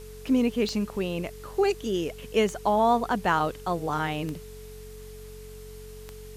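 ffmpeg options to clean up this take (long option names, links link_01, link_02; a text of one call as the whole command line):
ffmpeg -i in.wav -af "adeclick=threshold=4,bandreject=frequency=46.4:width_type=h:width=4,bandreject=frequency=92.8:width_type=h:width=4,bandreject=frequency=139.2:width_type=h:width=4,bandreject=frequency=185.6:width_type=h:width=4,bandreject=frequency=232:width_type=h:width=4,bandreject=frequency=430:width=30,afwtdn=0.0025" out.wav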